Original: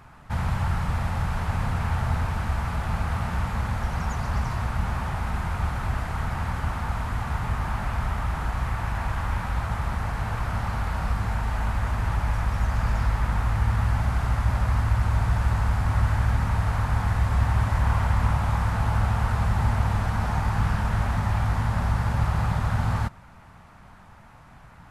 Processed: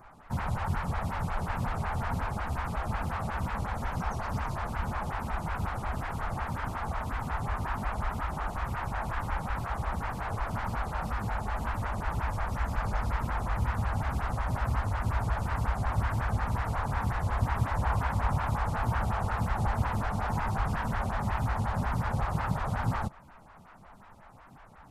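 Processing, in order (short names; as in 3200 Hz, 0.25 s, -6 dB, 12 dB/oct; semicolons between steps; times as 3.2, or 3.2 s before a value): wow and flutter 100 cents; photocell phaser 5.5 Hz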